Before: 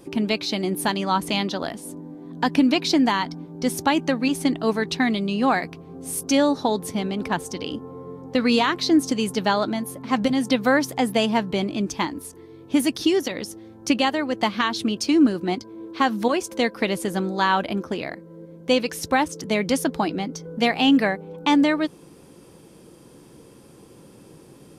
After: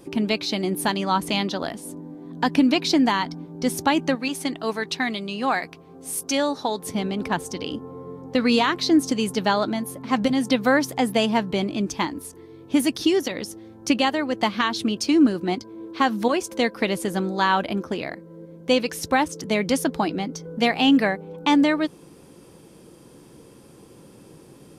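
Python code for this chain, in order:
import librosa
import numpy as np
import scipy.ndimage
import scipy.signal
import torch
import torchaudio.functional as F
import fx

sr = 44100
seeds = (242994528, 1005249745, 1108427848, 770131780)

y = fx.low_shelf(x, sr, hz=400.0, db=-9.5, at=(4.15, 6.87))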